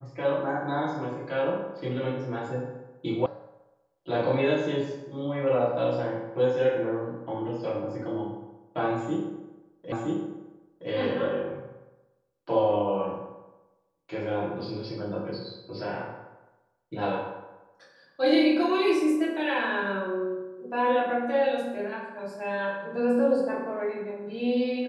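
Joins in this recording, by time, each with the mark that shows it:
3.26 s: sound stops dead
9.92 s: repeat of the last 0.97 s

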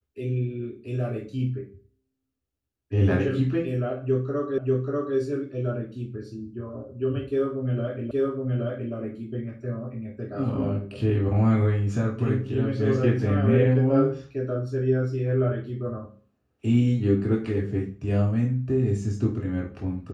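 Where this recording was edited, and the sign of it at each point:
4.58 s: repeat of the last 0.59 s
8.11 s: repeat of the last 0.82 s

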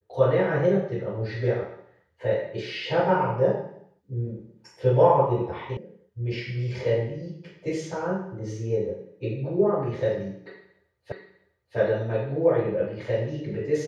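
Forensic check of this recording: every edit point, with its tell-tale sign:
5.77 s: sound stops dead
11.12 s: repeat of the last 0.65 s

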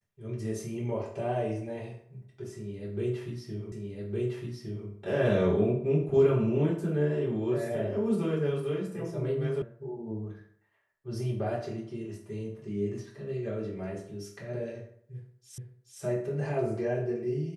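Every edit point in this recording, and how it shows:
3.72 s: repeat of the last 1.16 s
9.62 s: sound stops dead
15.58 s: repeat of the last 0.43 s

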